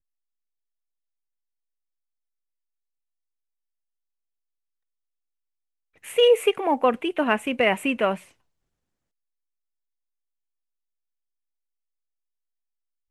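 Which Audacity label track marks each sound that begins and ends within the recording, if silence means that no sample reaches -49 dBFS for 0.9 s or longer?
5.960000	8.320000	sound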